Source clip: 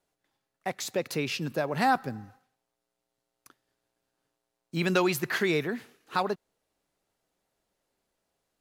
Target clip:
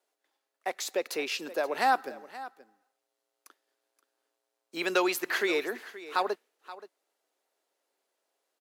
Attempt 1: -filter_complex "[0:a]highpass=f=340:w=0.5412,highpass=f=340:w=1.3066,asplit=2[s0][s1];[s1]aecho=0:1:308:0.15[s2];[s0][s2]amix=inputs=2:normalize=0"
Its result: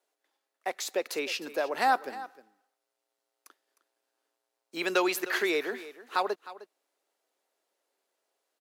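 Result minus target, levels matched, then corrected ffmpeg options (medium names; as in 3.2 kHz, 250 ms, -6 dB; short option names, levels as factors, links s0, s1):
echo 218 ms early
-filter_complex "[0:a]highpass=f=340:w=0.5412,highpass=f=340:w=1.3066,asplit=2[s0][s1];[s1]aecho=0:1:526:0.15[s2];[s0][s2]amix=inputs=2:normalize=0"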